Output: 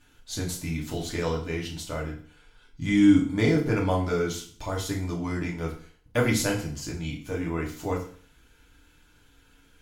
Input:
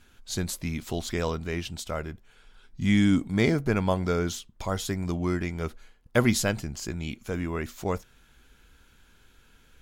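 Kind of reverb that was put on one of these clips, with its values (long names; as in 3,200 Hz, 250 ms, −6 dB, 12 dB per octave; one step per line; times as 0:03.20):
feedback delay network reverb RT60 0.47 s, low-frequency decay 1.1×, high-frequency decay 0.95×, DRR −2.5 dB
level −4.5 dB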